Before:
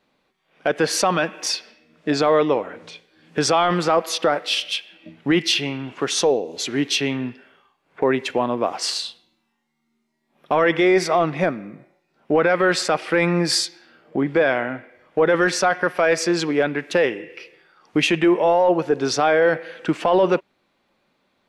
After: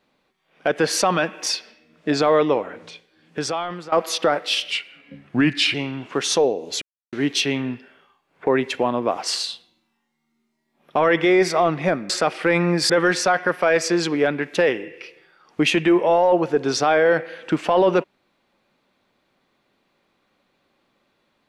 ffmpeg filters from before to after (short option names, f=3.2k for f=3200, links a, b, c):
-filter_complex "[0:a]asplit=7[a][b][c][d][e][f][g];[a]atrim=end=3.92,asetpts=PTS-STARTPTS,afade=t=out:st=2.81:d=1.11:silence=0.11885[h];[b]atrim=start=3.92:end=4.704,asetpts=PTS-STARTPTS,afade=t=in:d=0.004:c=hsin:silence=0.11885[i];[c]atrim=start=4.7:end=5.61,asetpts=PTS-STARTPTS,asetrate=38367,aresample=44100[j];[d]atrim=start=5.606:end=6.68,asetpts=PTS-STARTPTS,afade=t=out:st=1.07:d=0.004:c=hsin,apad=pad_dur=0.31[k];[e]atrim=start=6.68:end=11.652,asetpts=PTS-STARTPTS,afade=t=in:d=0.004:c=hsin[l];[f]atrim=start=12.768:end=13.572[m];[g]atrim=start=15.258[n];[h][i]concat=n=2:v=0:a=1[o];[o][j]acrossfade=d=0.004:c1=hsin:c2=hsin[p];[k][l]concat=n=2:v=0:a=1[q];[p][q]acrossfade=d=0.004:c1=hsin:c2=hsin[r];[r][m]acrossfade=d=0.004:c1=hsin:c2=hsin[s];[s][n]acrossfade=d=0.004:c1=hsin:c2=hsin"